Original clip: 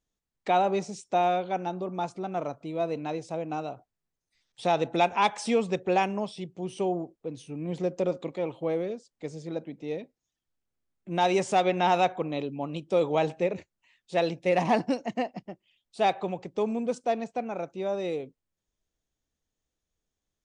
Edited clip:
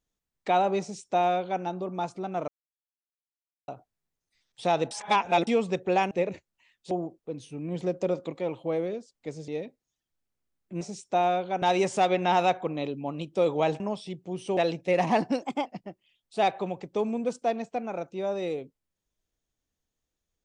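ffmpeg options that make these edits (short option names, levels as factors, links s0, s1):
-filter_complex "[0:a]asplit=14[s0][s1][s2][s3][s4][s5][s6][s7][s8][s9][s10][s11][s12][s13];[s0]atrim=end=2.48,asetpts=PTS-STARTPTS,afade=t=out:st=2.476:d=0.004:c=hsin[s14];[s1]atrim=start=2.48:end=3.68,asetpts=PTS-STARTPTS,volume=0[s15];[s2]atrim=start=3.68:end=4.912,asetpts=PTS-STARTPTS,afade=t=in:d=0.004:c=hsin[s16];[s3]atrim=start=4.908:end=5.472,asetpts=PTS-STARTPTS,areverse[s17];[s4]atrim=start=5.468:end=6.112[s18];[s5]atrim=start=13.348:end=14.152[s19];[s6]atrim=start=6.878:end=9.452[s20];[s7]atrim=start=9.838:end=11.172[s21];[s8]atrim=start=0.808:end=1.622[s22];[s9]atrim=start=11.168:end=13.352[s23];[s10]atrim=start=6.108:end=6.882[s24];[s11]atrim=start=14.148:end=15.004[s25];[s12]atrim=start=15:end=15.28,asetpts=PTS-STARTPTS,asetrate=51156,aresample=44100[s26];[s13]atrim=start=15.276[s27];[s14][s15][s16]concat=n=3:v=0:a=1[s28];[s28][s17]acrossfade=d=0.004:c1=hsin:c2=hsin[s29];[s29][s18]acrossfade=d=0.004:c1=hsin:c2=hsin[s30];[s30][s19]acrossfade=d=0.004:c1=hsin:c2=hsin[s31];[s31][s20]acrossfade=d=0.004:c1=hsin:c2=hsin[s32];[s32][s21]acrossfade=d=0.004:c1=hsin:c2=hsin[s33];[s33][s22]acrossfade=d=0.004:c1=hsin:c2=hsin[s34];[s34][s23]acrossfade=d=0.004:c1=hsin:c2=hsin[s35];[s35][s24]acrossfade=d=0.004:c1=hsin:c2=hsin[s36];[s36][s25]acrossfade=d=0.004:c1=hsin:c2=hsin[s37];[s37][s26]acrossfade=d=0.004:c1=hsin:c2=hsin[s38];[s38][s27]acrossfade=d=0.004:c1=hsin:c2=hsin"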